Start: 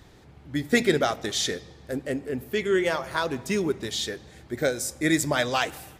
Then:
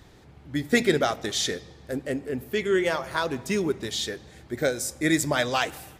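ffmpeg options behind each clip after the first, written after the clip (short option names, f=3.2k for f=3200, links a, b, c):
-af anull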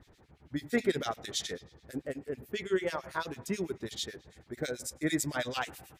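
-filter_complex "[0:a]acrossover=split=1900[a][b];[a]aeval=exprs='val(0)*(1-1/2+1/2*cos(2*PI*9.1*n/s))':c=same[c];[b]aeval=exprs='val(0)*(1-1/2-1/2*cos(2*PI*9.1*n/s))':c=same[d];[c][d]amix=inputs=2:normalize=0,volume=-4dB"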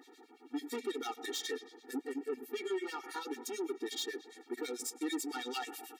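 -af "acompressor=threshold=-36dB:ratio=3,asoftclip=type=tanh:threshold=-38dB,afftfilt=real='re*eq(mod(floor(b*sr/1024/240),2),1)':imag='im*eq(mod(floor(b*sr/1024/240),2),1)':win_size=1024:overlap=0.75,volume=7.5dB"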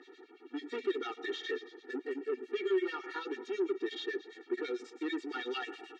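-filter_complex "[0:a]asoftclip=type=tanh:threshold=-28.5dB,acrossover=split=3800[a][b];[b]acompressor=threshold=-52dB:ratio=4:attack=1:release=60[c];[a][c]amix=inputs=2:normalize=0,highpass=330,equalizer=f=370:t=q:w=4:g=9,equalizer=f=830:t=q:w=4:g=-7,equalizer=f=1.6k:t=q:w=4:g=7,equalizer=f=2.8k:t=q:w=4:g=3,equalizer=f=5k:t=q:w=4:g=-5,lowpass=f=5.3k:w=0.5412,lowpass=f=5.3k:w=1.3066,volume=1.5dB"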